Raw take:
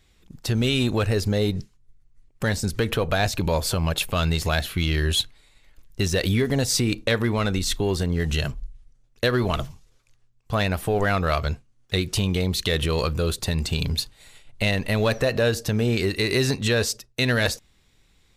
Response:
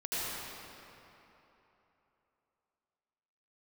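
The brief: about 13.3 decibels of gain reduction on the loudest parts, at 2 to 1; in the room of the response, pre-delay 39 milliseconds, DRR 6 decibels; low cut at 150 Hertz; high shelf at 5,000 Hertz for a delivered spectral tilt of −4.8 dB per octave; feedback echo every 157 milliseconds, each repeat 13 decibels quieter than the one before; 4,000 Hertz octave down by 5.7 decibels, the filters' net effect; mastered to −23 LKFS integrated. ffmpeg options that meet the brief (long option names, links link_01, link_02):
-filter_complex "[0:a]highpass=150,equalizer=frequency=4000:width_type=o:gain=-5,highshelf=frequency=5000:gain=-4.5,acompressor=threshold=-44dB:ratio=2,aecho=1:1:157|314|471:0.224|0.0493|0.0108,asplit=2[link_01][link_02];[1:a]atrim=start_sample=2205,adelay=39[link_03];[link_02][link_03]afir=irnorm=-1:irlink=0,volume=-12.5dB[link_04];[link_01][link_04]amix=inputs=2:normalize=0,volume=14.5dB"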